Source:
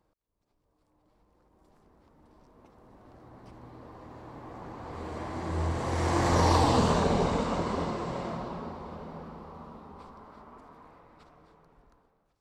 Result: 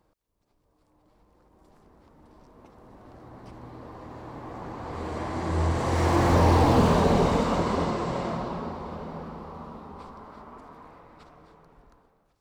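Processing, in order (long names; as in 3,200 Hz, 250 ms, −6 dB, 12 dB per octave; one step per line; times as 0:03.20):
slew-rate limiting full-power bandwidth 46 Hz
level +5 dB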